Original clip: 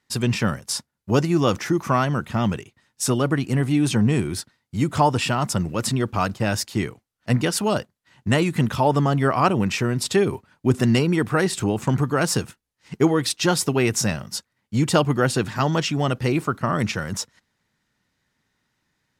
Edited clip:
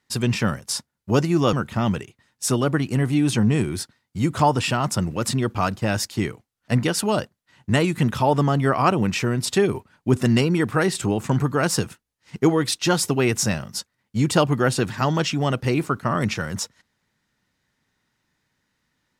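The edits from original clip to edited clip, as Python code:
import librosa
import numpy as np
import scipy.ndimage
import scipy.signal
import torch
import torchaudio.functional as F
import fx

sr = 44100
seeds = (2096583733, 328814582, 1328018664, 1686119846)

y = fx.edit(x, sr, fx.cut(start_s=1.53, length_s=0.58), tone=tone)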